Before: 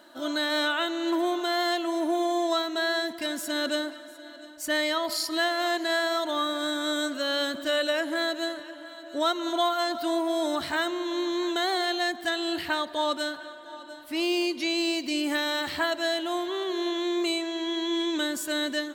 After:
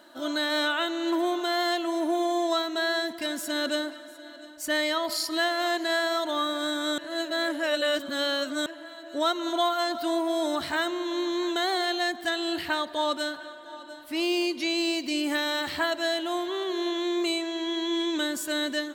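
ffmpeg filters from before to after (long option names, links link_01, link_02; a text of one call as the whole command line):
ffmpeg -i in.wav -filter_complex "[0:a]asplit=3[link_01][link_02][link_03];[link_01]atrim=end=6.982[link_04];[link_02]atrim=start=6.978:end=8.662,asetpts=PTS-STARTPTS,areverse[link_05];[link_03]atrim=start=8.658[link_06];[link_04][link_05]acrossfade=duration=0.004:curve1=hsin:curve2=hsin[link_07];[link_07][link_06]acrossfade=duration=0.004:curve1=hsin:curve2=hsin" out.wav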